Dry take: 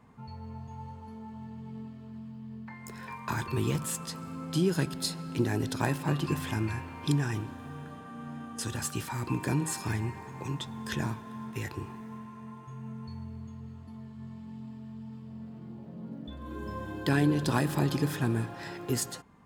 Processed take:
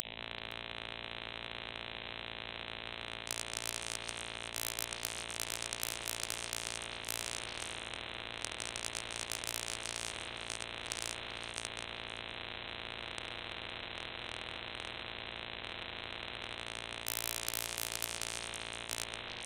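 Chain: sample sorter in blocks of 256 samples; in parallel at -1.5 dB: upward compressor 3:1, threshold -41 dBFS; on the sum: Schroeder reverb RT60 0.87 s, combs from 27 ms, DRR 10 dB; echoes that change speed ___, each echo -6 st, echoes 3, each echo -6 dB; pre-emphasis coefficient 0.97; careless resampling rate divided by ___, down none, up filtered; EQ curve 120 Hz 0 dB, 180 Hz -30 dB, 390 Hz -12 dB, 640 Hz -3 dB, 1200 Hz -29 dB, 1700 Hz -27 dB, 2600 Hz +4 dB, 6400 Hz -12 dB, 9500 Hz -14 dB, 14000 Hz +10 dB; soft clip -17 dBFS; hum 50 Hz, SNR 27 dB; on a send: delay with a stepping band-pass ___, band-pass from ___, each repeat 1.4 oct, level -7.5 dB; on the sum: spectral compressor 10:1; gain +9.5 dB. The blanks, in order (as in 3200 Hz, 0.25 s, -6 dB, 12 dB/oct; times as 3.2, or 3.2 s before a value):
0.795 s, 6×, 0.129 s, 460 Hz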